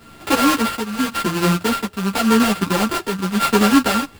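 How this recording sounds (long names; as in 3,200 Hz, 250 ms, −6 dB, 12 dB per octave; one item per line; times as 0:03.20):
a buzz of ramps at a fixed pitch in blocks of 32 samples
tremolo triangle 0.9 Hz, depth 65%
aliases and images of a low sample rate 6,100 Hz, jitter 20%
a shimmering, thickened sound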